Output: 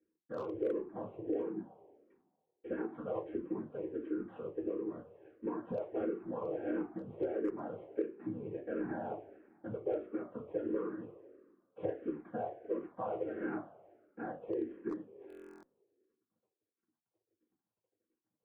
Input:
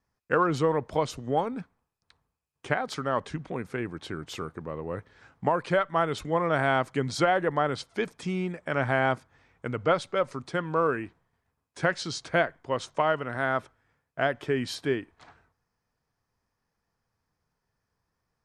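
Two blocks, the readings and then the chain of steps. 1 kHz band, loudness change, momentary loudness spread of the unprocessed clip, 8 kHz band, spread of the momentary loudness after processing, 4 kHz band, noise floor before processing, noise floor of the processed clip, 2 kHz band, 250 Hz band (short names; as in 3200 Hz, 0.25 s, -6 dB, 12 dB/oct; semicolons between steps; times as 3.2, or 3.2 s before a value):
-18.5 dB, -11.5 dB, 11 LU, under -35 dB, 12 LU, under -30 dB, -82 dBFS, under -85 dBFS, -23.0 dB, -6.0 dB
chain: CVSD 16 kbps; whisperiser; band-pass 370 Hz, Q 2.4; tremolo 2.8 Hz, depth 39%; two-slope reverb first 0.23 s, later 1.7 s, from -28 dB, DRR -6.5 dB; hard clip -16.5 dBFS, distortion -21 dB; compressor 6:1, threshold -33 dBFS, peak gain reduction 13 dB; stuck buffer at 15.28, samples 1024, times 14; endless phaser -1.5 Hz; gain +2 dB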